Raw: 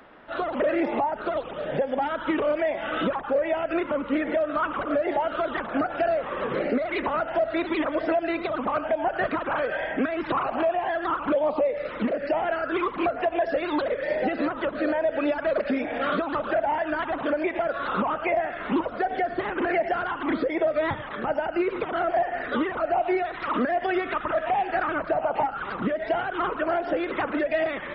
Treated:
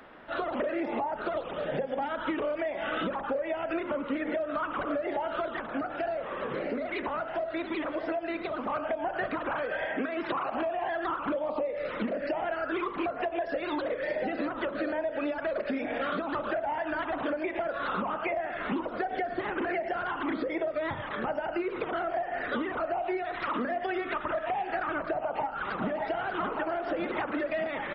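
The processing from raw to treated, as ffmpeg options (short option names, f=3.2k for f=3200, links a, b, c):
-filter_complex "[0:a]asettb=1/sr,asplit=3[a][b][c];[a]atrim=end=5.484[d];[b]atrim=start=5.48:end=8.7,asetpts=PTS-STARTPTS,afade=t=in:d=0.004:c=qsin,afade=t=out:st=3.216:d=0.004:c=qsin,flanger=delay=5.5:depth=8.6:regen=-89:speed=1.5:shape=sinusoidal[e];[c]atrim=start=8.696[f];[d][e]acrossfade=d=0.004:c1=hsin:c2=qsin[g];[g][f]acrossfade=d=0.004:c1=qsin:c2=hsin,asettb=1/sr,asplit=3[h][i][j];[h]atrim=end=9.854[k];[i]atrim=start=9.85:end=10.54,asetpts=PTS-STARTPTS,afade=t=in:d=0.004:c=qsin,afade=t=out:st=0.686:d=0.004:c=qsin,lowshelf=f=120:g=-11.5[l];[j]atrim=start=10.536[m];[k][l]acrossfade=d=0.004:c1=hsin:c2=qsin[n];[n][m]acrossfade=d=0.004:c1=qsin:c2=hsin,asplit=2[o][p];[p]afade=t=in:st=25.21:d=0.01,afade=t=out:st=25.89:d=0.01,aecho=0:1:590|1180|1770|2360|2950|3540|4130|4720|5310|5900|6490|7080:0.446684|0.357347|0.285877|0.228702|0.182962|0.146369|0.117095|0.0936763|0.0749411|0.0599529|0.0479623|0.0383698[q];[o][q]amix=inputs=2:normalize=0,bandreject=f=50.73:t=h:w=4,bandreject=f=101.46:t=h:w=4,bandreject=f=152.19:t=h:w=4,bandreject=f=202.92:t=h:w=4,bandreject=f=253.65:t=h:w=4,bandreject=f=304.38:t=h:w=4,bandreject=f=355.11:t=h:w=4,bandreject=f=405.84:t=h:w=4,bandreject=f=456.57:t=h:w=4,bandreject=f=507.3:t=h:w=4,bandreject=f=558.03:t=h:w=4,bandreject=f=608.76:t=h:w=4,bandreject=f=659.49:t=h:w=4,bandreject=f=710.22:t=h:w=4,bandreject=f=760.95:t=h:w=4,bandreject=f=811.68:t=h:w=4,bandreject=f=862.41:t=h:w=4,bandreject=f=913.14:t=h:w=4,bandreject=f=963.87:t=h:w=4,bandreject=f=1.0146k:t=h:w=4,bandreject=f=1.06533k:t=h:w=4,bandreject=f=1.11606k:t=h:w=4,bandreject=f=1.16679k:t=h:w=4,bandreject=f=1.21752k:t=h:w=4,bandreject=f=1.26825k:t=h:w=4,bandreject=f=1.31898k:t=h:w=4,bandreject=f=1.36971k:t=h:w=4,acompressor=threshold=-28dB:ratio=6"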